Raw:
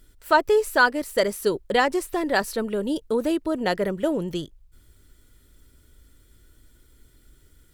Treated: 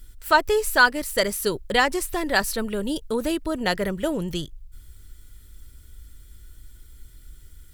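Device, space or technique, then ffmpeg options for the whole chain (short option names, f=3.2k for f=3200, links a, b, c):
smiley-face EQ: -af "lowshelf=f=100:g=7.5,equalizer=f=400:t=o:w=2.8:g=-7.5,highshelf=f=9k:g=3.5,volume=4.5dB"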